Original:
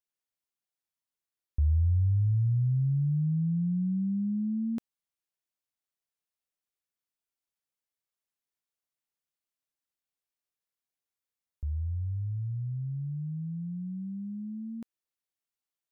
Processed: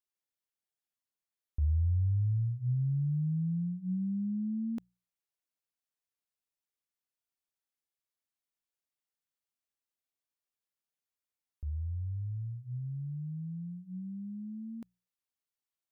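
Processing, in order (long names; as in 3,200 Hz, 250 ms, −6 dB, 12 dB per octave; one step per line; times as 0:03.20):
mains-hum notches 60/120/180 Hz
level −3.5 dB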